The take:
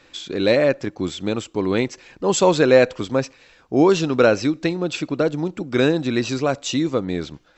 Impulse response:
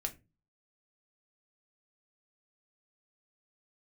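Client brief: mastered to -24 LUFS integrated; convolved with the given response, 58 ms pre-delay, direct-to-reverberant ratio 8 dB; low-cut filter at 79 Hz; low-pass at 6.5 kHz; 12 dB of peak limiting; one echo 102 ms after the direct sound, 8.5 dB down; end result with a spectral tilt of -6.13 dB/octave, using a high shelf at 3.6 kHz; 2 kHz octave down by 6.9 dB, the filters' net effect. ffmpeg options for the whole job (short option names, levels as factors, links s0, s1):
-filter_complex "[0:a]highpass=79,lowpass=6500,equalizer=f=2000:t=o:g=-8,highshelf=f=3600:g=-5.5,alimiter=limit=0.188:level=0:latency=1,aecho=1:1:102:0.376,asplit=2[s0][s1];[1:a]atrim=start_sample=2205,adelay=58[s2];[s1][s2]afir=irnorm=-1:irlink=0,volume=0.376[s3];[s0][s3]amix=inputs=2:normalize=0,volume=1.06"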